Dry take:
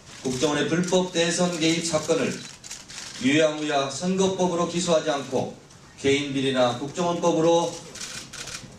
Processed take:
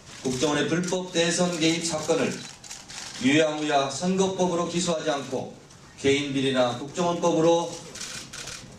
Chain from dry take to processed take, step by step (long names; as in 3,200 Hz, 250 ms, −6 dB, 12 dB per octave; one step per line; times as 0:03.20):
0:01.70–0:04.31: parametric band 800 Hz +7.5 dB 0.29 octaves
every ending faded ahead of time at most 100 dB per second